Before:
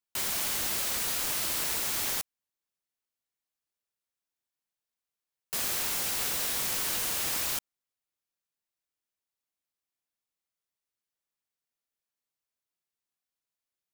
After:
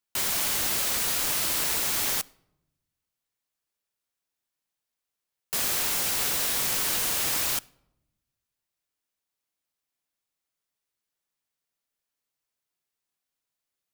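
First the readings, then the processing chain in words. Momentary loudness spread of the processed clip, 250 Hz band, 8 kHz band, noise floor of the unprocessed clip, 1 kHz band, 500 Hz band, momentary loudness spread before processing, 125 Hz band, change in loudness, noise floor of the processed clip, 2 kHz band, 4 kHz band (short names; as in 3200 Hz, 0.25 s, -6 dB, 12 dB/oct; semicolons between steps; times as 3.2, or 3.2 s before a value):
3 LU, +4.0 dB, +4.0 dB, under -85 dBFS, +4.0 dB, +4.0 dB, 3 LU, +4.5 dB, +4.0 dB, under -85 dBFS, +4.0 dB, +4.0 dB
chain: shoebox room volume 2600 m³, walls furnished, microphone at 0.3 m; gain +4 dB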